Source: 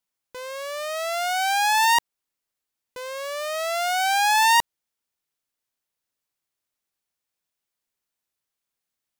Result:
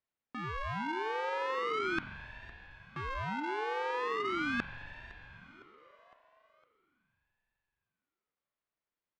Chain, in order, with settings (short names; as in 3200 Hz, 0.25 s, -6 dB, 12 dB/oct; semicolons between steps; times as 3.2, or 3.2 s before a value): LPF 2200 Hz 12 dB/oct; reverse; compressor, threshold -30 dBFS, peak gain reduction 13 dB; reverse; feedback echo 0.509 s, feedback 52%, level -19.5 dB; spring tank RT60 4 s, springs 42 ms, chirp 60 ms, DRR 12 dB; ring modulator with a swept carrier 530 Hz, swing 65%, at 0.4 Hz